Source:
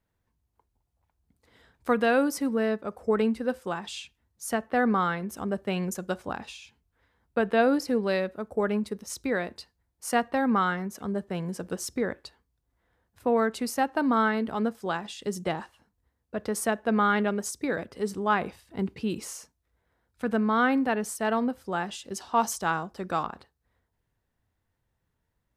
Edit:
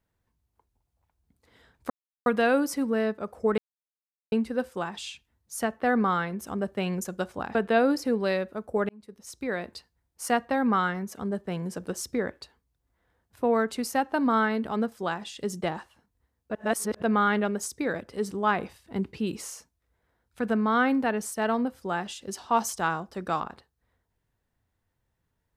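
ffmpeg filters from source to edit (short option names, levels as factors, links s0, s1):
-filter_complex "[0:a]asplit=7[s0][s1][s2][s3][s4][s5][s6];[s0]atrim=end=1.9,asetpts=PTS-STARTPTS,afade=t=out:st=1.896:d=0.004:c=hsin,apad=pad_dur=0.36[s7];[s1]atrim=start=1.9:end=3.22,asetpts=PTS-STARTPTS,afade=t=in:d=0.004:c=hsin,afade=t=out:st=1.316:d=0.004:c=hsin,apad=pad_dur=0.74[s8];[s2]atrim=start=3.22:end=6.452,asetpts=PTS-STARTPTS,afade=t=in:d=0.004:c=hsin[s9];[s3]atrim=start=7.378:end=8.72,asetpts=PTS-STARTPTS,afade=t=out:st=1.338:d=0.004:c=hsin[s10];[s4]atrim=start=8.72:end=16.382,asetpts=PTS-STARTPTS,afade=t=in:d=0.85[s11];[s5]atrim=start=16.378:end=16.852,asetpts=PTS-STARTPTS,areverse[s12];[s6]atrim=start=16.848[s13];[s7][s8][s9]concat=n=3:v=0:a=1[s14];[s10][s11]concat=n=2:v=0:a=1[s15];[s14][s15]acrossfade=d=0.004:c1=hsin:c2=hsin[s16];[s16][s12]acrossfade=d=0.004:c1=hsin:c2=hsin[s17];[s17][s13]acrossfade=d=0.004:c1=hsin:c2=hsin"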